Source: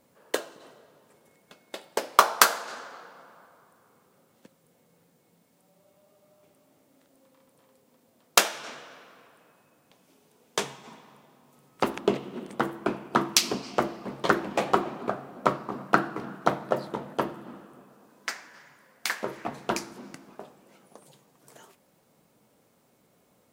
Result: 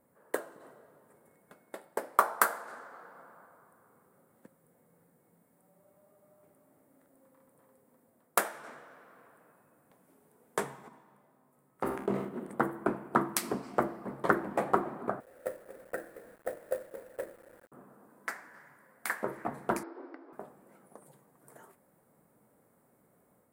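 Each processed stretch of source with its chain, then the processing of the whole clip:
10.88–12.29 s: feedback comb 65 Hz, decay 0.54 s, mix 70% + decay stretcher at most 63 dB/s
15.20–17.72 s: vowel filter e + hum notches 60/120/180/240/300/360/420 Hz + companded quantiser 4-bit
19.83–20.33 s: brick-wall FIR band-pass 270–5500 Hz + tilt EQ -2.5 dB/octave
whole clip: high-order bell 4.1 kHz -14.5 dB; level rider gain up to 3 dB; trim -5 dB

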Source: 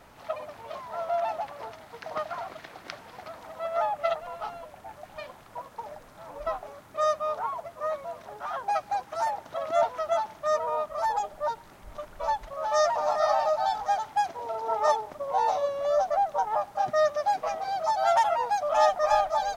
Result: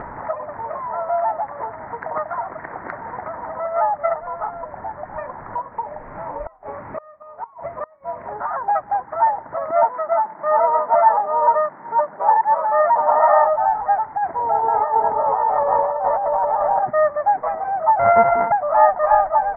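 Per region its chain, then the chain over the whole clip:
5.72–8.32 s: resonant high shelf 2.3 kHz +11 dB, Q 1.5 + doubling 38 ms -12 dB + inverted gate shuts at -25 dBFS, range -31 dB
9.71–13.47 s: chunks repeated in reverse 675 ms, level -0.5 dB + high-pass 160 Hz 24 dB/octave
14.14–16.83 s: delay with an opening low-pass 171 ms, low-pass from 200 Hz, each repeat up 2 oct, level 0 dB + compressor with a negative ratio -27 dBFS
17.99–18.52 s: sorted samples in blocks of 64 samples + peaking EQ 900 Hz +11 dB 0.51 oct
whole clip: steep low-pass 2 kHz 72 dB/octave; peaking EQ 940 Hz +8 dB 0.25 oct; upward compressor, threshold -28 dBFS; trim +6 dB

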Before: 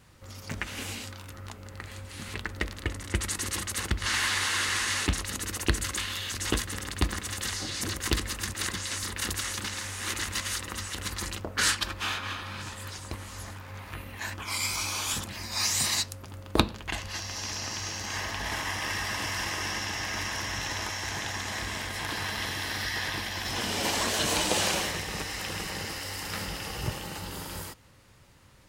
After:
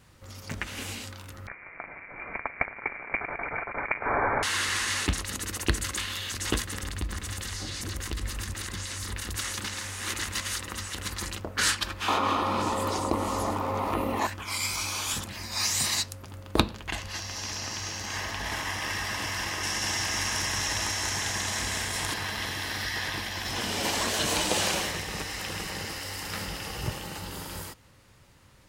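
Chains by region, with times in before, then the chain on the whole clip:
1.47–4.43 s: square wave that keeps the level + high-pass 220 Hz 24 dB/octave + frequency inversion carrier 2.6 kHz
6.83–9.36 s: compression, threshold -32 dBFS + bass shelf 86 Hz +12 dB
12.08–14.27 s: high-order bell 520 Hz +14 dB 2.8 oct + band-stop 1.6 kHz, Q 5.1 + level flattener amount 50%
19.63–22.14 s: peaking EQ 8.6 kHz +8 dB 1.3 oct + delay 188 ms -3.5 dB
whole clip: none

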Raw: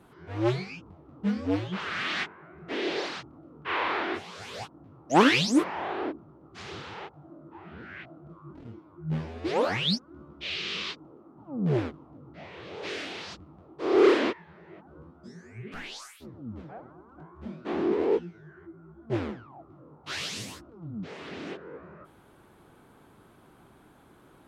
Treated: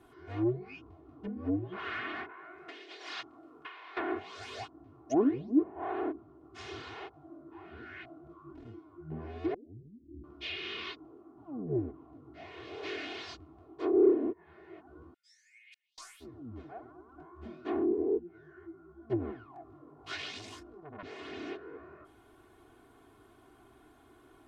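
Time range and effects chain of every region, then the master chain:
2.29–3.97 s: compressor with a negative ratio -40 dBFS + high-pass 930 Hz 6 dB/octave
9.54–10.24 s: tilt EQ -2 dB/octave + compression 8:1, threshold -37 dBFS + inverse Chebyshev low-pass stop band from 1.1 kHz, stop band 60 dB
15.14–15.98 s: steep high-pass 2 kHz 48 dB/octave + inverted gate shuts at -44 dBFS, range -38 dB
19.54–21.03 s: upward compressor, threshold -46 dBFS + doubling 20 ms -4 dB + transformer saturation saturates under 2.2 kHz
whole clip: low-pass that closes with the level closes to 400 Hz, closed at -23.5 dBFS; comb 2.8 ms, depth 81%; trim -5.5 dB

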